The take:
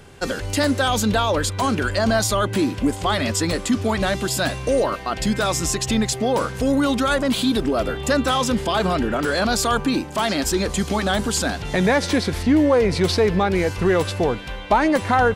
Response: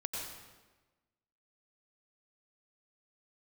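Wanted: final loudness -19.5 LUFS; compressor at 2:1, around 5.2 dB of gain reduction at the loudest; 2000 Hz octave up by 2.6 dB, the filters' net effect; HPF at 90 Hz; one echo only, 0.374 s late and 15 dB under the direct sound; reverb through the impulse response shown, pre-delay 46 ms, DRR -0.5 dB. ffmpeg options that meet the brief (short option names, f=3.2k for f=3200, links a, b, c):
-filter_complex "[0:a]highpass=90,equalizer=f=2k:t=o:g=3.5,acompressor=threshold=-22dB:ratio=2,aecho=1:1:374:0.178,asplit=2[a][b];[1:a]atrim=start_sample=2205,adelay=46[c];[b][c]afir=irnorm=-1:irlink=0,volume=-1.5dB[d];[a][d]amix=inputs=2:normalize=0,volume=1dB"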